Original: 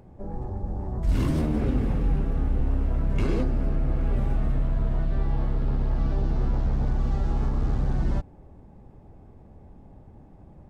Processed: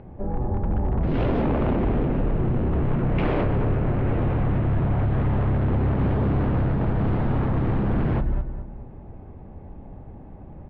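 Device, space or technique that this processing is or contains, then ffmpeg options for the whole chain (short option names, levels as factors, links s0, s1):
synthesiser wavefolder: -filter_complex "[0:a]asettb=1/sr,asplit=3[s0][s1][s2];[s0]atrim=end=1.094[s3];[s1]atrim=start=1.09:end=2.73,asetpts=PTS-STARTPTS,afade=t=in:d=0.004:c=qsin,afade=t=out:st=1.636:d=0.004:c=qsin,equalizer=f=1500:w=0.66:g=-4[s4];[s2]atrim=start=2.726[s5];[s3][s4]acrossfade=d=0.004:c1=hsin:c2=qsin[s6];[s6][s5]acrossfade=d=0.004:c1=qsin:c2=hsin,asplit=2[s7][s8];[s8]adelay=209,lowpass=f=2500:p=1,volume=0.376,asplit=2[s9][s10];[s10]adelay=209,lowpass=f=2500:p=1,volume=0.38,asplit=2[s11][s12];[s12]adelay=209,lowpass=f=2500:p=1,volume=0.38,asplit=2[s13][s14];[s14]adelay=209,lowpass=f=2500:p=1,volume=0.38[s15];[s7][s9][s11][s13][s15]amix=inputs=5:normalize=0,aeval=exprs='0.0668*(abs(mod(val(0)/0.0668+3,4)-2)-1)':c=same,lowpass=f=3000:w=0.5412,lowpass=f=3000:w=1.3066,volume=2.24"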